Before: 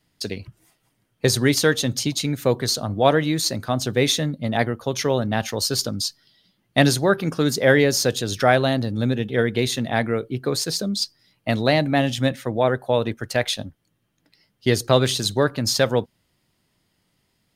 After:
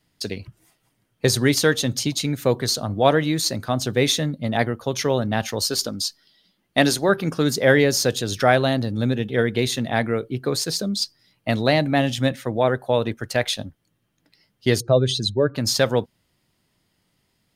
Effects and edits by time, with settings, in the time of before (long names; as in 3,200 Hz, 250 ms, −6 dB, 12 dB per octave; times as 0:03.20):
0:05.70–0:07.09: parametric band 120 Hz −10 dB
0:14.80–0:15.55: expanding power law on the bin magnitudes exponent 1.8